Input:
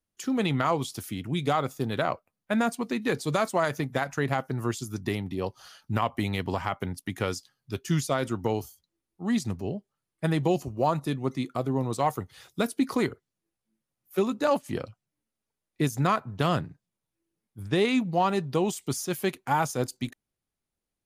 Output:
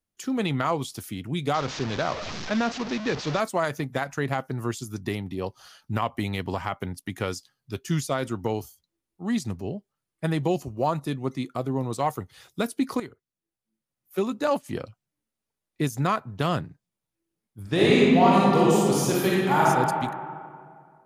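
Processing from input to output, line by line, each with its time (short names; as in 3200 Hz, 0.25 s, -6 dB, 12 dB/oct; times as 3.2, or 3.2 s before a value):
1.54–3.4 delta modulation 32 kbps, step -27.5 dBFS
13–14.33 fade in, from -13 dB
17.62–19.62 reverb throw, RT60 2.1 s, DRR -6.5 dB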